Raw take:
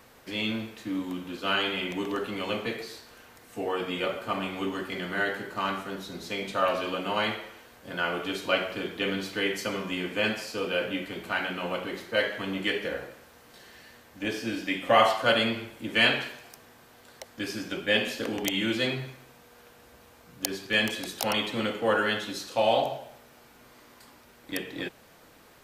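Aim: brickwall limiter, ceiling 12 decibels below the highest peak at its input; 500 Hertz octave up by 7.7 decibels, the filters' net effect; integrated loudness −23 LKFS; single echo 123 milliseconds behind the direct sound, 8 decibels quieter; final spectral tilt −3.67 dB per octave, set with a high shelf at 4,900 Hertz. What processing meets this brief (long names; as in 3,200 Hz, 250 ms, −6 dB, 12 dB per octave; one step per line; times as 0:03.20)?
parametric band 500 Hz +9 dB
high-shelf EQ 4,900 Hz +8 dB
brickwall limiter −14.5 dBFS
single-tap delay 123 ms −8 dB
level +3.5 dB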